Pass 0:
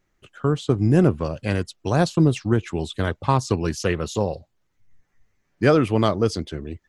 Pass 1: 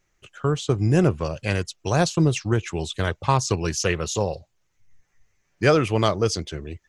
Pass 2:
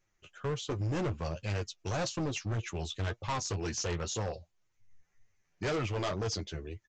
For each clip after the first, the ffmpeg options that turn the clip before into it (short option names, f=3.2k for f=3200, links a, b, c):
-af "equalizer=f=250:t=o:w=0.67:g=-7,equalizer=f=2.5k:t=o:w=0.67:g=4,equalizer=f=6.3k:t=o:w=0.67:g=8"
-af "flanger=delay=8.4:depth=3.7:regen=29:speed=1.9:shape=triangular,aresample=16000,volume=25.5dB,asoftclip=hard,volume=-25.5dB,aresample=44100,volume=-4dB"